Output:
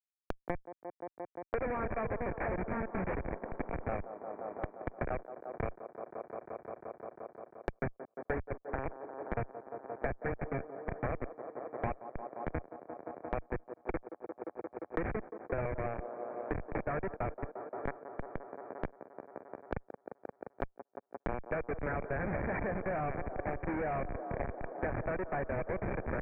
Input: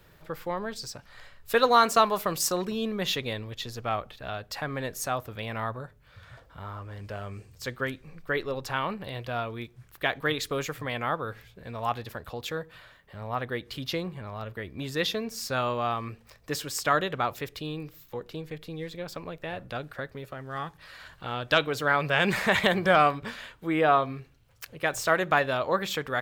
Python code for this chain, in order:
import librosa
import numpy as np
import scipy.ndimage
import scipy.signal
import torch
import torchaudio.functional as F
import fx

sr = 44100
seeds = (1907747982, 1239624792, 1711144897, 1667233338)

y = scipy.signal.sosfilt(scipy.signal.butter(4, 49.0, 'highpass', fs=sr, output='sos'), x)
y = fx.power_curve(y, sr, exponent=1.4)
y = fx.echo_alternate(y, sr, ms=487, hz=880.0, feedback_pct=75, wet_db=-12.5)
y = fx.schmitt(y, sr, flips_db=-32.0)
y = fx.echo_wet_bandpass(y, sr, ms=175, feedback_pct=72, hz=590.0, wet_db=-15.5)
y = 10.0 ** (-35.0 / 20.0) * np.tanh(y / 10.0 ** (-35.0 / 20.0))
y = scipy.signal.sosfilt(scipy.signal.cheby1(6, 6, 2400.0, 'lowpass', fs=sr, output='sos'), y)
y = fx.band_squash(y, sr, depth_pct=100)
y = y * librosa.db_to_amplitude(7.5)